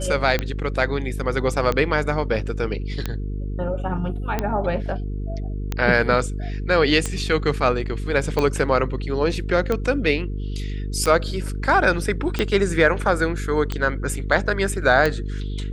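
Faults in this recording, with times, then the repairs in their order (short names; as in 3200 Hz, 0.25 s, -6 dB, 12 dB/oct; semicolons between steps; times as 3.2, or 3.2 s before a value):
buzz 50 Hz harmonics 9 -27 dBFS
tick 45 rpm -9 dBFS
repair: de-click; de-hum 50 Hz, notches 9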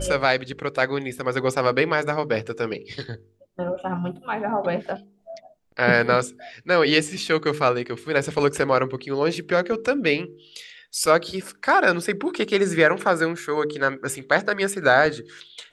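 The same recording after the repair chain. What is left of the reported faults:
none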